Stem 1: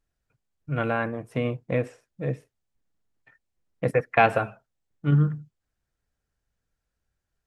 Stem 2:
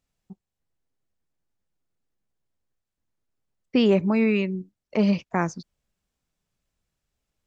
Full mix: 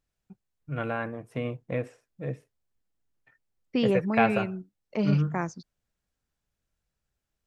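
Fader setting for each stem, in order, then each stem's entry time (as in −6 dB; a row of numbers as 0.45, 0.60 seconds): −5.0, −6.0 decibels; 0.00, 0.00 seconds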